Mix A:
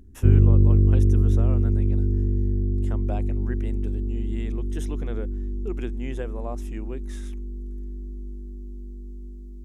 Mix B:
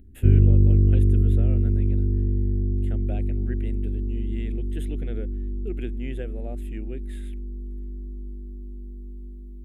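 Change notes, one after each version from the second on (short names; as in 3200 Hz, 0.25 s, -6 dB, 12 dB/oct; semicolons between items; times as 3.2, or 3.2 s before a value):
master: add fixed phaser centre 2500 Hz, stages 4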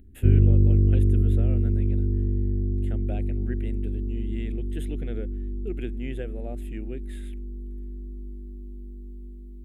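background: add low shelf 500 Hz -3 dB; reverb: on, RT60 0.60 s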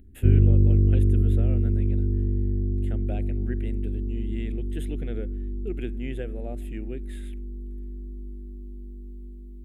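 speech: send +9.0 dB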